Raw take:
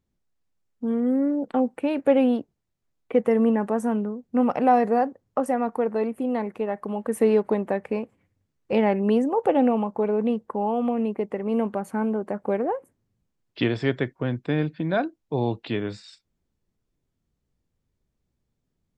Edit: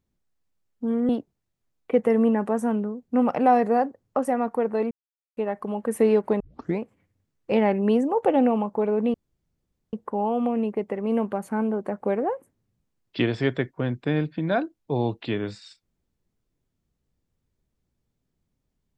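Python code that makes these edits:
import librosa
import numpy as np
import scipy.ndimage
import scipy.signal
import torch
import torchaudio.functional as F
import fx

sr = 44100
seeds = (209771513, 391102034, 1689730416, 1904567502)

y = fx.edit(x, sr, fx.cut(start_s=1.09, length_s=1.21),
    fx.silence(start_s=6.12, length_s=0.46),
    fx.tape_start(start_s=7.61, length_s=0.39),
    fx.insert_room_tone(at_s=10.35, length_s=0.79), tone=tone)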